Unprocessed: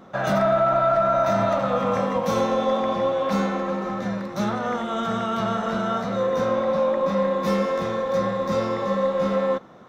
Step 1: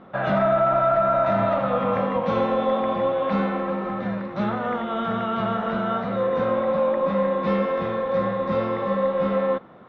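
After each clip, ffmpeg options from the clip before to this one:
-af "lowpass=f=3.3k:w=0.5412,lowpass=f=3.3k:w=1.3066"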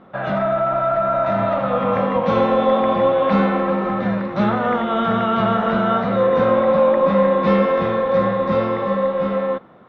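-af "dynaudnorm=f=770:g=5:m=7dB"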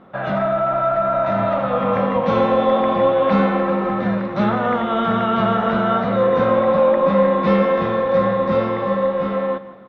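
-af "aecho=1:1:168|336|504:0.15|0.0569|0.0216"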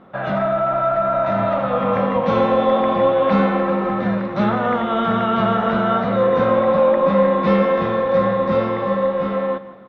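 -af anull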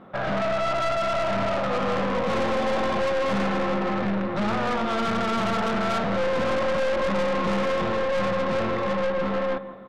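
-af "aeval=exprs='(tanh(15.8*val(0)+0.5)-tanh(0.5))/15.8':c=same,volume=1.5dB"

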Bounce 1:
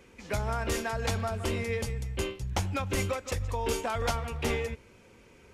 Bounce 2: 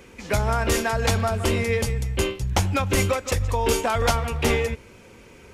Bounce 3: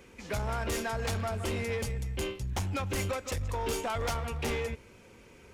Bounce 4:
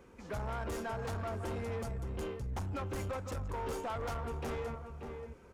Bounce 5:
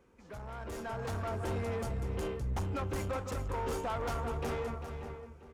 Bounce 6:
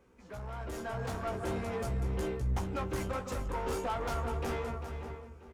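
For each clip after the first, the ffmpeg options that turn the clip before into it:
-af "highshelf=f=11k:g=3.5,volume=8.5dB"
-af "asoftclip=type=tanh:threshold=-20dB,volume=-7dB"
-filter_complex "[0:a]highshelf=f=1.7k:t=q:w=1.5:g=-7,asplit=2[a][b];[b]adelay=583.1,volume=-8dB,highshelf=f=4k:g=-13.1[c];[a][c]amix=inputs=2:normalize=0,asoftclip=type=tanh:threshold=-30dB,volume=-3dB"
-filter_complex "[0:a]dynaudnorm=f=250:g=7:m=10dB,asplit=2[a][b];[b]aecho=0:1:397:0.316[c];[a][c]amix=inputs=2:normalize=0,volume=-7.5dB"
-filter_complex "[0:a]asplit=2[a][b];[b]adelay=16,volume=-5dB[c];[a][c]amix=inputs=2:normalize=0"

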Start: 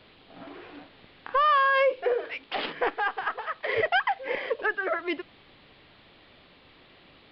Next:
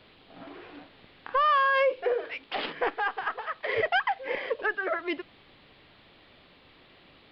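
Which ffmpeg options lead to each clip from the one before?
-af "acontrast=33,volume=-6.5dB"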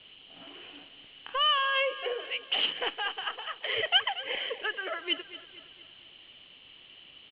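-af "lowpass=f=3k:t=q:w=14,aecho=1:1:232|464|696|928|1160:0.178|0.0871|0.0427|0.0209|0.0103,volume=-7.5dB"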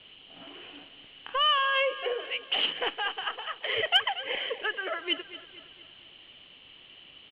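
-af "highshelf=f=4k:g=-5,aeval=exprs='0.224*(cos(1*acos(clip(val(0)/0.224,-1,1)))-cos(1*PI/2))+0.0178*(cos(3*acos(clip(val(0)/0.224,-1,1)))-cos(3*PI/2))+0.00562*(cos(5*acos(clip(val(0)/0.224,-1,1)))-cos(5*PI/2))':c=same,volume=3.5dB"

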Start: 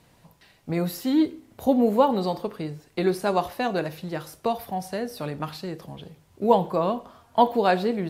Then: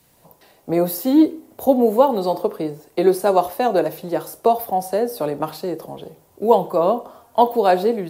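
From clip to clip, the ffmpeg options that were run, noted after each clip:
-filter_complex "[0:a]aemphasis=mode=production:type=50fm,acrossover=split=320|900[a][b][c];[b]dynaudnorm=f=150:g=3:m=16dB[d];[a][d][c]amix=inputs=3:normalize=0,volume=-2.5dB"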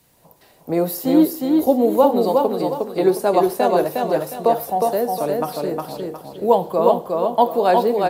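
-af "aecho=1:1:360|720|1080|1440:0.708|0.234|0.0771|0.0254,volume=-1dB"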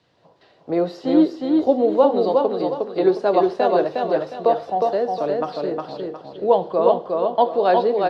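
-af "highpass=110,equalizer=f=160:t=q:w=4:g=-5,equalizer=f=230:t=q:w=4:g=-6,equalizer=f=900:t=q:w=4:g=-4,equalizer=f=2.3k:t=q:w=4:g=-5,lowpass=f=4.4k:w=0.5412,lowpass=f=4.4k:w=1.3066" -ar 48000 -c:a libopus -b:a 96k

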